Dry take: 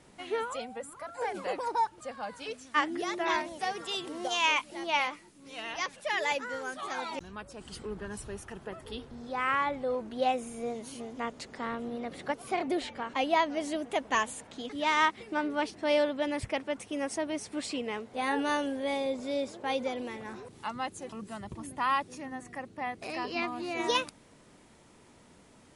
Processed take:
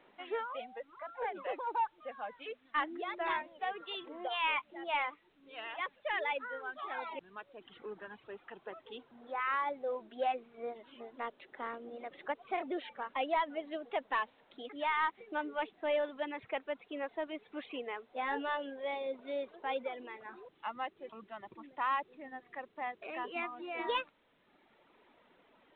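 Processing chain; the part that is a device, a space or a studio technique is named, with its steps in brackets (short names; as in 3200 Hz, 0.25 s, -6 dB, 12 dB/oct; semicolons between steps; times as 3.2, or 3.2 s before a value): reverb removal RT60 1.1 s; telephone (BPF 370–3100 Hz; soft clip -21 dBFS, distortion -17 dB; gain -2.5 dB; A-law 64 kbps 8000 Hz)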